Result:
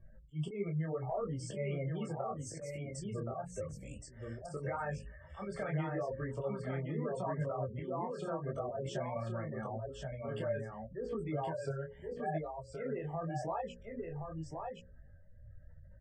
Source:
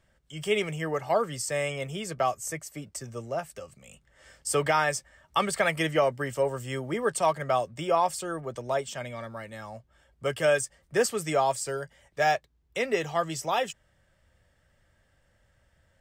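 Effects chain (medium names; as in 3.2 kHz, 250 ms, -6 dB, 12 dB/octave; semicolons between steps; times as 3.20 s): spectral gate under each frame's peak -15 dB strong; hum notches 60/120/180/240/300/360/420/480/540 Hz; low-pass that closes with the level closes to 2.1 kHz, closed at -21.5 dBFS; tilt EQ -3 dB/octave; peak limiter -21 dBFS, peak gain reduction 9 dB; slow attack 220 ms; compression, threshold -36 dBFS, peak gain reduction 11.5 dB; delay 1072 ms -4.5 dB; detune thickener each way 28 cents; trim +4 dB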